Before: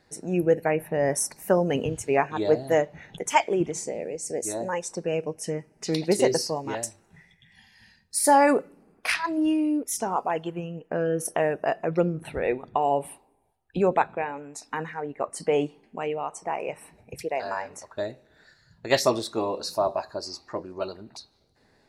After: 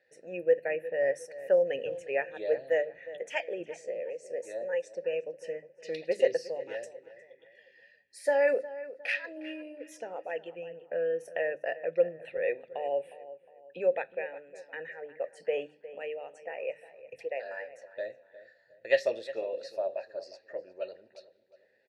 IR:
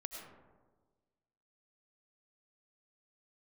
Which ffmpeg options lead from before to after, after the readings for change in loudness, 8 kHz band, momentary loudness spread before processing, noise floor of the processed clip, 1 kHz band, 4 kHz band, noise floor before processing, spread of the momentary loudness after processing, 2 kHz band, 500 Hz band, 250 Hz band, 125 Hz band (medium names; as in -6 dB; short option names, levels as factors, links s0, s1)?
-6.5 dB, under -20 dB, 12 LU, -66 dBFS, -16.5 dB, -12.5 dB, -64 dBFS, 15 LU, -4.0 dB, -4.0 dB, -19.0 dB, under -20 dB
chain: -filter_complex "[0:a]asplit=3[s0][s1][s2];[s0]bandpass=f=530:t=q:w=8,volume=1[s3];[s1]bandpass=f=1840:t=q:w=8,volume=0.501[s4];[s2]bandpass=f=2480:t=q:w=8,volume=0.355[s5];[s3][s4][s5]amix=inputs=3:normalize=0,equalizer=f=330:w=0.69:g=-7,bandreject=f=50:t=h:w=6,bandreject=f=100:t=h:w=6,bandreject=f=150:t=h:w=6,bandreject=f=200:t=h:w=6,bandreject=f=250:t=h:w=6,bandreject=f=300:t=h:w=6,asplit=2[s6][s7];[s7]adelay=359,lowpass=f=2200:p=1,volume=0.178,asplit=2[s8][s9];[s9]adelay=359,lowpass=f=2200:p=1,volume=0.39,asplit=2[s10][s11];[s11]adelay=359,lowpass=f=2200:p=1,volume=0.39,asplit=2[s12][s13];[s13]adelay=359,lowpass=f=2200:p=1,volume=0.39[s14];[s6][s8][s10][s12][s14]amix=inputs=5:normalize=0,volume=2"